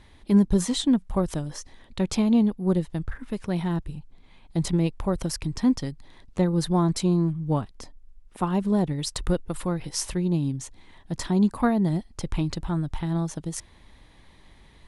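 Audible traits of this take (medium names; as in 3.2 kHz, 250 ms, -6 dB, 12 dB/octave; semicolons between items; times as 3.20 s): noise floor -53 dBFS; spectral tilt -6.5 dB/octave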